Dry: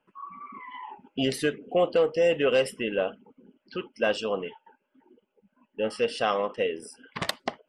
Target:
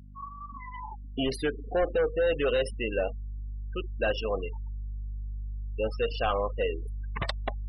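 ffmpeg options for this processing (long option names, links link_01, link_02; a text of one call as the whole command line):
ffmpeg -i in.wav -af "volume=21dB,asoftclip=hard,volume=-21dB,afftfilt=real='re*gte(hypot(re,im),0.0316)':imag='im*gte(hypot(re,im),0.0316)':win_size=1024:overlap=0.75,aeval=exprs='val(0)+0.00447*(sin(2*PI*50*n/s)+sin(2*PI*2*50*n/s)/2+sin(2*PI*3*50*n/s)/3+sin(2*PI*4*50*n/s)/4+sin(2*PI*5*50*n/s)/5)':channel_layout=same,asubboost=boost=11:cutoff=62" out.wav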